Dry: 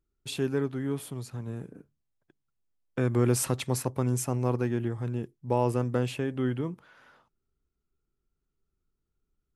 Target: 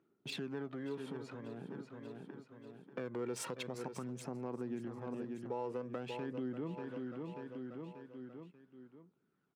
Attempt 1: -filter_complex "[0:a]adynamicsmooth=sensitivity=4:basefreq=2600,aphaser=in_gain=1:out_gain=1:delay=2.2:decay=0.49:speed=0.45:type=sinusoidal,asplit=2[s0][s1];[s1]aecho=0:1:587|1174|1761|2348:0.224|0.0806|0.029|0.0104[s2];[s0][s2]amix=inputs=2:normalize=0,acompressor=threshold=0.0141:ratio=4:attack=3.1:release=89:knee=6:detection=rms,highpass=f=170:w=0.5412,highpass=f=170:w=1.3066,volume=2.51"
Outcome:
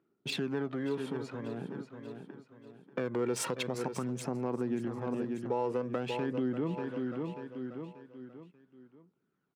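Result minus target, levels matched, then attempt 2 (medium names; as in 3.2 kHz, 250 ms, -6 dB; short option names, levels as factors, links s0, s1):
compression: peak gain reduction -8 dB
-filter_complex "[0:a]adynamicsmooth=sensitivity=4:basefreq=2600,aphaser=in_gain=1:out_gain=1:delay=2.2:decay=0.49:speed=0.45:type=sinusoidal,asplit=2[s0][s1];[s1]aecho=0:1:587|1174|1761|2348:0.224|0.0806|0.029|0.0104[s2];[s0][s2]amix=inputs=2:normalize=0,acompressor=threshold=0.00422:ratio=4:attack=3.1:release=89:knee=6:detection=rms,highpass=f=170:w=0.5412,highpass=f=170:w=1.3066,volume=2.51"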